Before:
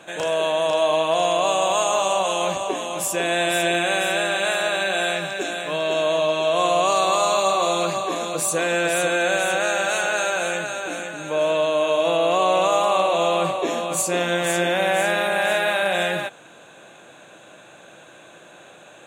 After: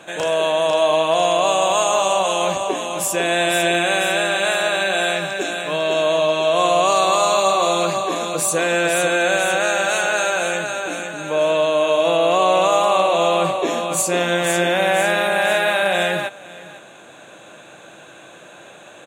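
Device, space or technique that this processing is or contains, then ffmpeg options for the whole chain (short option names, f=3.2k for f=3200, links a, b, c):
ducked delay: -filter_complex "[0:a]asplit=3[a][b][c];[b]adelay=505,volume=-5dB[d];[c]apad=whole_len=863020[e];[d][e]sidechaincompress=threshold=-41dB:ratio=8:attack=16:release=778[f];[a][f]amix=inputs=2:normalize=0,volume=3dB"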